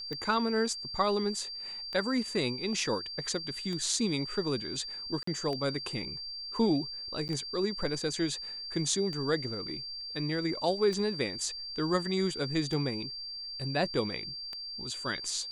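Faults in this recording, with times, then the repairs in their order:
tick 33 1/3 rpm -24 dBFS
whine 4.7 kHz -38 dBFS
5.23–5.27 s: dropout 44 ms
7.28–7.29 s: dropout 9.6 ms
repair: de-click; band-stop 4.7 kHz, Q 30; interpolate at 5.23 s, 44 ms; interpolate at 7.28 s, 9.6 ms

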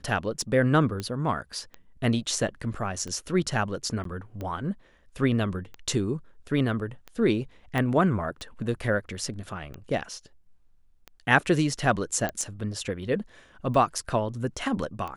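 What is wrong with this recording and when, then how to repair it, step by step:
tick 45 rpm -23 dBFS
1.00 s: pop -18 dBFS
4.04–4.05 s: dropout 13 ms
7.78 s: pop -15 dBFS
12.29 s: pop -15 dBFS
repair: de-click; interpolate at 4.04 s, 13 ms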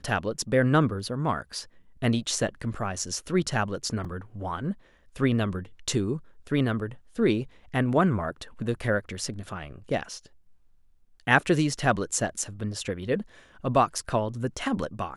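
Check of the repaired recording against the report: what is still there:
7.78 s: pop
12.29 s: pop

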